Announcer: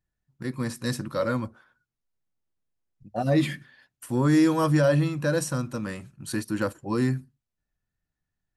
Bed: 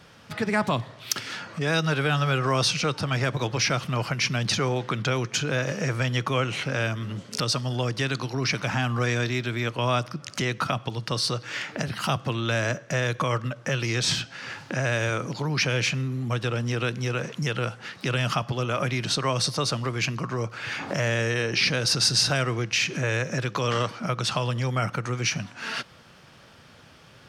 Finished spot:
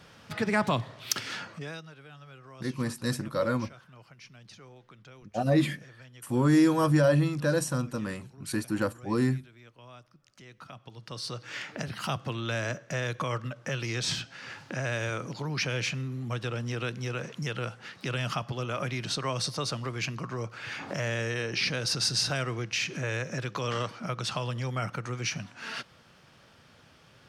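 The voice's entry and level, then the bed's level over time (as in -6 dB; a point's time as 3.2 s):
2.20 s, -1.5 dB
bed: 1.43 s -2 dB
1.93 s -26 dB
10.35 s -26 dB
11.53 s -6 dB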